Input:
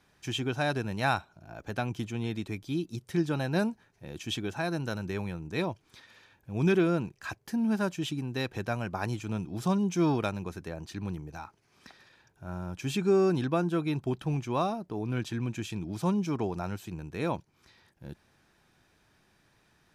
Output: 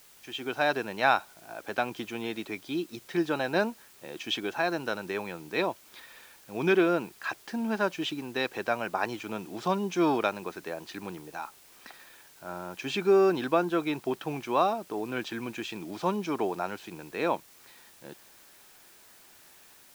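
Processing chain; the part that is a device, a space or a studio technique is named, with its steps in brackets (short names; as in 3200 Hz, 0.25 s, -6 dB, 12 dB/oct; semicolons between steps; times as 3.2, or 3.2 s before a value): dictaphone (BPF 370–4300 Hz; AGC gain up to 10.5 dB; wow and flutter 21 cents; white noise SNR 25 dB); gain -5 dB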